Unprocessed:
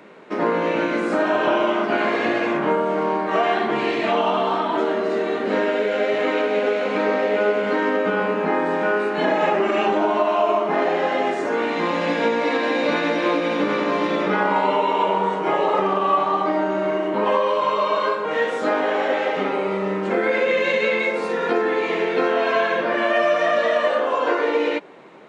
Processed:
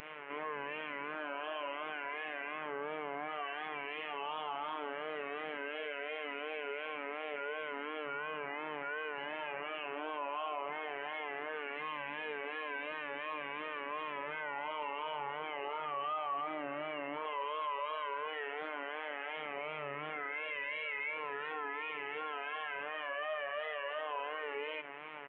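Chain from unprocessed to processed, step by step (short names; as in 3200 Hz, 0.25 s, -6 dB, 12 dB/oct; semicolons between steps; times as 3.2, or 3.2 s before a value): Chebyshev low-pass 3100 Hz, order 6; doubler 22 ms -5 dB; robotiser 148 Hz; vibrato 2.8 Hz 84 cents; tilt shelf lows -9.5 dB, about 720 Hz; limiter -26.5 dBFS, peak gain reduction 23.5 dB; gain -2 dB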